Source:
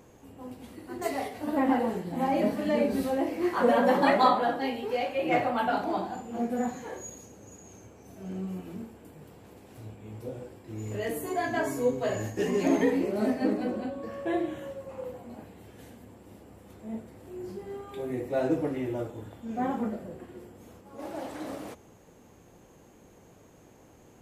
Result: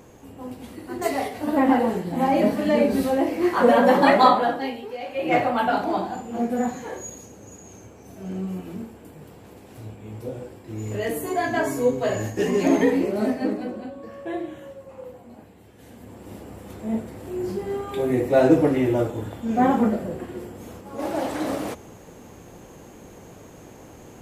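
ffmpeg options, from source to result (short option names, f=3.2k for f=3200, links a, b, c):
-af "volume=29.5dB,afade=t=out:st=4.3:d=0.68:silence=0.251189,afade=t=in:st=4.98:d=0.38:silence=0.281838,afade=t=out:st=13.02:d=0.72:silence=0.473151,afade=t=in:st=15.79:d=0.55:silence=0.251189"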